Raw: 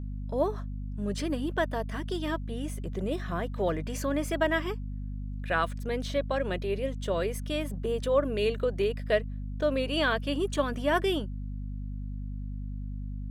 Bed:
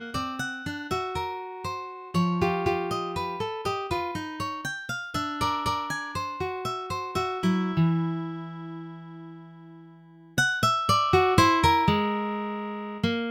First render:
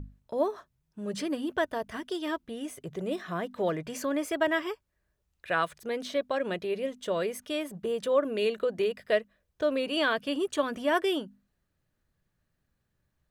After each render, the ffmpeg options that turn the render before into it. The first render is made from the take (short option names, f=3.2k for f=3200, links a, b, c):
-af "bandreject=f=50:t=h:w=6,bandreject=f=100:t=h:w=6,bandreject=f=150:t=h:w=6,bandreject=f=200:t=h:w=6,bandreject=f=250:t=h:w=6"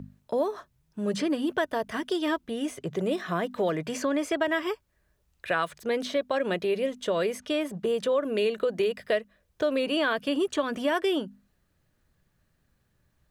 -filter_complex "[0:a]asplit=2[a][b];[b]alimiter=level_in=2dB:limit=-24dB:level=0:latency=1:release=400,volume=-2dB,volume=2dB[c];[a][c]amix=inputs=2:normalize=0,acrossover=split=110|2400|7900[d][e][f][g];[d]acompressor=threshold=-60dB:ratio=4[h];[e]acompressor=threshold=-22dB:ratio=4[i];[f]acompressor=threshold=-37dB:ratio=4[j];[g]acompressor=threshold=-55dB:ratio=4[k];[h][i][j][k]amix=inputs=4:normalize=0"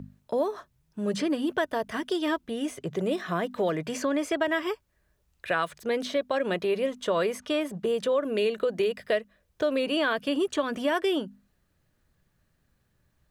-filter_complex "[0:a]asettb=1/sr,asplit=3[a][b][c];[a]atrim=end=6.554[d];[b]atrim=start=6.55:end=7.6,asetpts=PTS-STARTPTS,afade=t=in:d=0.004:c=qsin,afade=t=out:st=1.046:d=0.004:c=qsin,equalizer=f=1.1k:t=o:w=0.77:g=5.5[e];[c]atrim=start=7.596[f];[d][e]acrossfade=d=0.004:c1=hsin:c2=qsin[g];[g][f]acrossfade=d=0.004:c1=qsin:c2=hsin"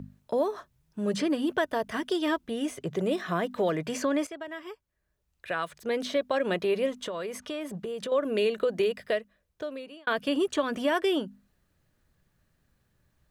-filter_complex "[0:a]asettb=1/sr,asplit=3[a][b][c];[a]atrim=end=7.034[d];[b]atrim=start=7.03:end=8.12,asetpts=PTS-STARTPTS,afade=t=in:d=0.004:c=qsin,afade=t=out:st=1.086:d=0.004:c=qsin,acompressor=threshold=-32dB:ratio=4:attack=3.2:release=140:knee=1:detection=peak[e];[c]atrim=start=8.116[f];[d][e]acrossfade=d=0.004:c1=hsin:c2=qsin[g];[g][f]acrossfade=d=0.004:c1=qsin:c2=hsin,asplit=3[h][i][j];[h]atrim=end=4.27,asetpts=PTS-STARTPTS,afade=t=out:st=4.266:d=0.004:c=hsin:silence=0.223872[k];[i]atrim=start=4.27:end=10.07,asetpts=PTS-STARTPTS,afade=t=in:d=1.85:c=qua:silence=0.223872,afade=t=out:st=4.59:d=1.21[l];[j]atrim=start=10.07,asetpts=PTS-STARTPTS,afade=t=in:d=0.004:c=hsin[m];[k][l][m]concat=n=3:v=0:a=1"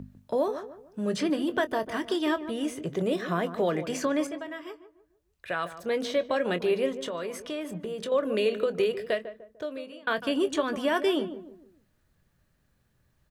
-filter_complex "[0:a]asplit=2[a][b];[b]adelay=23,volume=-13dB[c];[a][c]amix=inputs=2:normalize=0,asplit=2[d][e];[e]adelay=149,lowpass=f=990:p=1,volume=-10.5dB,asplit=2[f][g];[g]adelay=149,lowpass=f=990:p=1,volume=0.4,asplit=2[h][i];[i]adelay=149,lowpass=f=990:p=1,volume=0.4,asplit=2[j][k];[k]adelay=149,lowpass=f=990:p=1,volume=0.4[l];[f][h][j][l]amix=inputs=4:normalize=0[m];[d][m]amix=inputs=2:normalize=0"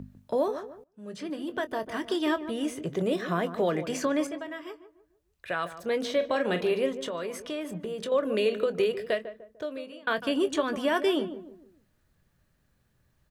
-filter_complex "[0:a]asettb=1/sr,asplit=3[a][b][c];[a]atrim=end=6.154[d];[b]atrim=start=6.15:end=6.81,asetpts=PTS-STARTPTS,afade=t=in:d=0.004:c=qsin,afade=t=out:st=0.656:d=0.004:c=qsin,asplit=2[e][f];[f]adelay=44,volume=-10dB[g];[e][g]amix=inputs=2:normalize=0,atrim=end_sample=29106[h];[c]atrim=start=6.806[i];[d][h]acrossfade=d=0.004:c1=hsin:c2=qsin[j];[j][i]acrossfade=d=0.004:c1=qsin:c2=hsin,asplit=2[k][l];[k]atrim=end=0.84,asetpts=PTS-STARTPTS,afade=t=out:st=0.836:d=0.004:c=hsin:silence=0.0841395[m];[l]atrim=start=0.84,asetpts=PTS-STARTPTS,afade=t=in:d=1.4:silence=0.0841395[n];[m][n]concat=n=2:v=0:a=1"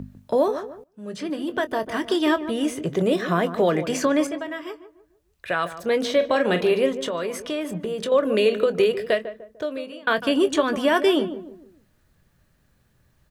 -af "volume=6.5dB"